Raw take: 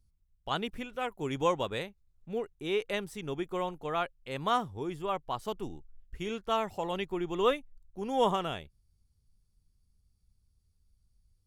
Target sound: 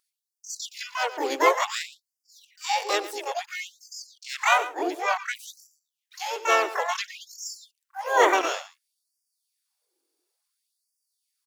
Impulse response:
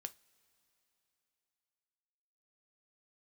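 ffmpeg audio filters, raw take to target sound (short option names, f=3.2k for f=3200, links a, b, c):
-filter_complex "[0:a]aecho=1:1:113:0.178,acontrast=40,asplit=4[a][b][c][d];[b]asetrate=35002,aresample=44100,atempo=1.25992,volume=-9dB[e];[c]asetrate=55563,aresample=44100,atempo=0.793701,volume=-9dB[f];[d]asetrate=88200,aresample=44100,atempo=0.5,volume=-1dB[g];[a][e][f][g]amix=inputs=4:normalize=0,afftfilt=real='re*gte(b*sr/1024,260*pow(4700/260,0.5+0.5*sin(2*PI*0.57*pts/sr)))':imag='im*gte(b*sr/1024,260*pow(4700/260,0.5+0.5*sin(2*PI*0.57*pts/sr)))':win_size=1024:overlap=0.75"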